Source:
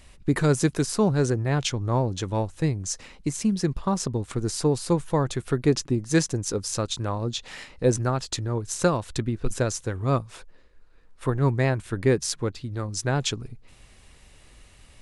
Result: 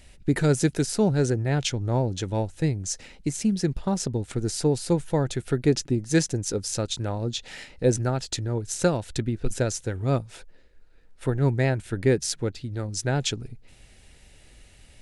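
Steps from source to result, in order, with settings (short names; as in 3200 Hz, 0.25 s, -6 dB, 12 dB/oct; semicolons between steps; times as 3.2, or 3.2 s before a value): bell 1100 Hz -15 dB 0.25 oct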